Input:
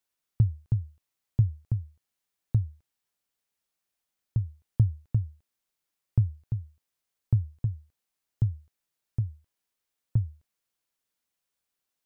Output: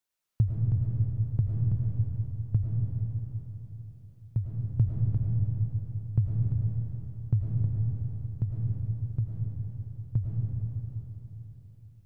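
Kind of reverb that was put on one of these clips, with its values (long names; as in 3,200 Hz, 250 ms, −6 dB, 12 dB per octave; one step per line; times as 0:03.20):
comb and all-pass reverb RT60 3.9 s, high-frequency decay 0.65×, pre-delay 65 ms, DRR −3 dB
level −2.5 dB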